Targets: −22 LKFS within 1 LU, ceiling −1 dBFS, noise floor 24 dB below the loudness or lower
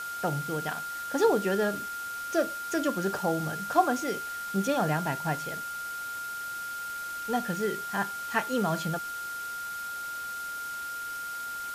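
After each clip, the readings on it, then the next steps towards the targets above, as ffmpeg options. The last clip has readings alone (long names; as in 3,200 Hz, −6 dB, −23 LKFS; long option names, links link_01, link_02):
interfering tone 1,400 Hz; level of the tone −34 dBFS; background noise floor −37 dBFS; target noise floor −55 dBFS; integrated loudness −30.5 LKFS; sample peak −9.5 dBFS; target loudness −22.0 LKFS
→ -af "bandreject=frequency=1400:width=30"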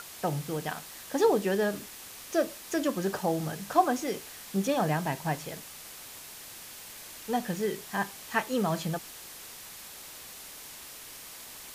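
interfering tone none found; background noise floor −46 dBFS; target noise floor −55 dBFS
→ -af "afftdn=noise_reduction=9:noise_floor=-46"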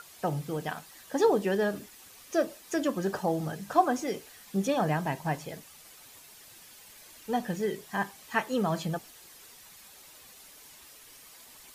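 background noise floor −53 dBFS; target noise floor −55 dBFS
→ -af "afftdn=noise_reduction=6:noise_floor=-53"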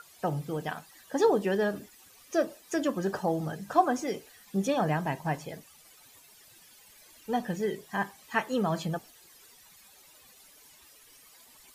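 background noise floor −57 dBFS; integrated loudness −30.5 LKFS; sample peak −10.5 dBFS; target loudness −22.0 LKFS
→ -af "volume=8.5dB"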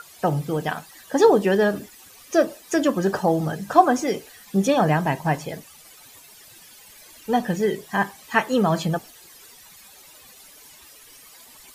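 integrated loudness −22.0 LKFS; sample peak −2.0 dBFS; background noise floor −48 dBFS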